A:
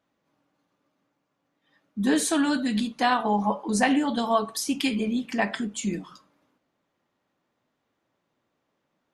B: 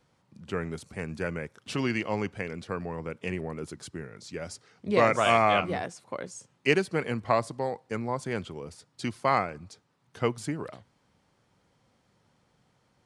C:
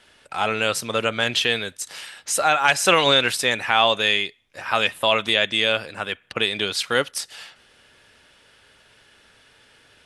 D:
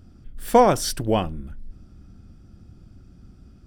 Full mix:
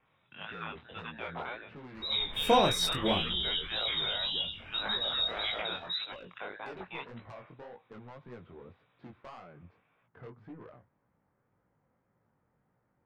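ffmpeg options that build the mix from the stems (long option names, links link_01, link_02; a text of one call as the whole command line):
ffmpeg -i stem1.wav -i stem2.wav -i stem3.wav -i stem4.wav -filter_complex "[0:a]flanger=delay=16:depth=7.2:speed=2.7,adelay=50,volume=0dB[link_01];[1:a]lowpass=frequency=1900:width=0.5412,lowpass=frequency=1900:width=1.3066,acompressor=threshold=-30dB:ratio=8,asoftclip=type=tanh:threshold=-35dB,volume=-4dB[link_02];[2:a]aderivative,aeval=exprs='0.106*(abs(mod(val(0)/0.106+3,4)-2)-1)':channel_layout=same,volume=-4dB[link_03];[3:a]adelay=1950,volume=-5.5dB[link_04];[link_01][link_03]amix=inputs=2:normalize=0,lowpass=frequency=3400:width_type=q:width=0.5098,lowpass=frequency=3400:width_type=q:width=0.6013,lowpass=frequency=3400:width_type=q:width=0.9,lowpass=frequency=3400:width_type=q:width=2.563,afreqshift=-4000,alimiter=limit=-20.5dB:level=0:latency=1:release=116,volume=0dB[link_05];[link_02][link_04][link_05]amix=inputs=3:normalize=0,flanger=delay=16.5:depth=7.3:speed=1.8" out.wav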